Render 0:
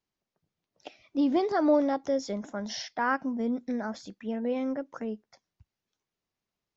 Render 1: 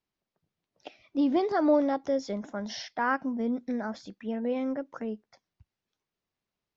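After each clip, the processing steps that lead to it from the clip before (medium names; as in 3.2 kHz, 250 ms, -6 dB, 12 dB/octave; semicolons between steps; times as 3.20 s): low-pass 5.5 kHz 12 dB/octave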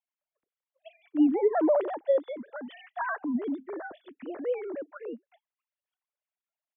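formants replaced by sine waves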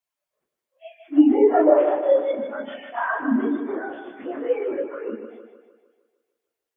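phase randomisation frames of 100 ms; two-band feedback delay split 350 Hz, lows 105 ms, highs 153 ms, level -8 dB; trim +7 dB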